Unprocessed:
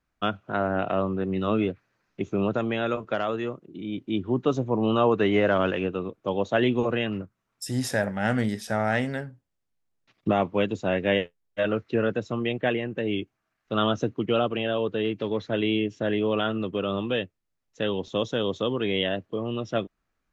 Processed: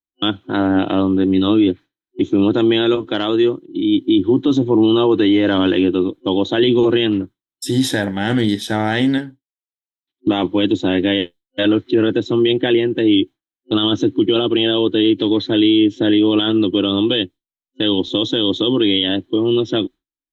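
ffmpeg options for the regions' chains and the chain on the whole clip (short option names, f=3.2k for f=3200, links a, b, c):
-filter_complex "[0:a]asettb=1/sr,asplit=3[a][b][c];[a]atrim=end=9.184[d];[b]atrim=start=9.18:end=10.44,asetpts=PTS-STARTPTS,afade=t=in:d=0.004:c=qsin,afade=t=out:st=1.256:d=0.004:c=qsin,highpass=42,lowshelf=f=480:g=-6[e];[c]atrim=start=10.436[f];[d][e]acrossfade=d=0.004:c1=hsin:c2=qsin[g];[g][f]acrossfade=d=0.004:c1=qsin:c2=hsin,agate=range=-33dB:threshold=-39dB:ratio=3:detection=peak,superequalizer=6b=3.98:8b=0.562:10b=0.631:13b=3.98,alimiter=limit=-13.5dB:level=0:latency=1:release=17,volume=7.5dB"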